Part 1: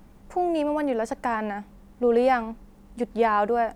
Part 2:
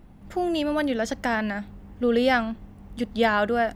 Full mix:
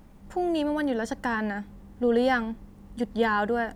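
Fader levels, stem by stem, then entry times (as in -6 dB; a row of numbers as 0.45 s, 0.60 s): -2.0 dB, -8.5 dB; 0.00 s, 0.00 s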